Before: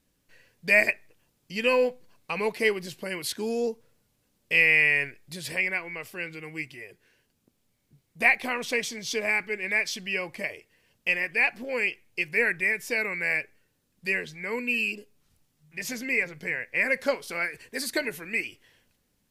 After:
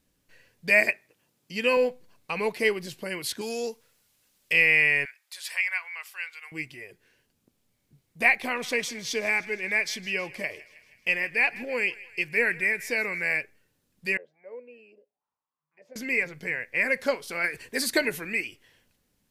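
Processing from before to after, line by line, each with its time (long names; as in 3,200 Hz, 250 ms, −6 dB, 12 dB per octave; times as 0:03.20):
0:00.70–0:01.77: high-pass filter 130 Hz
0:03.41–0:04.53: tilt shelving filter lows −7.5 dB, about 850 Hz
0:05.05–0:06.52: high-pass filter 930 Hz 24 dB per octave
0:08.31–0:13.28: feedback echo with a high-pass in the loop 159 ms, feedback 66%, high-pass 810 Hz, level −18.5 dB
0:14.17–0:15.96: envelope filter 550–1,100 Hz, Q 7.4, down, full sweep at −31 dBFS
0:17.44–0:18.33: clip gain +4 dB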